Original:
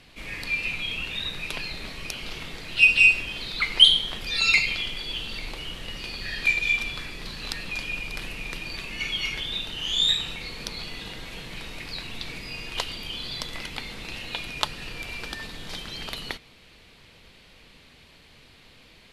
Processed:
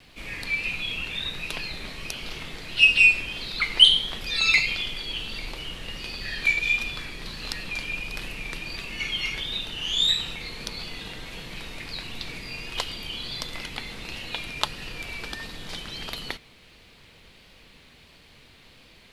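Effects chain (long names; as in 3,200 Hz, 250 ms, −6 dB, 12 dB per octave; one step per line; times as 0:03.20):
pitch vibrato 1.5 Hz 39 cents
bit-depth reduction 12 bits, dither none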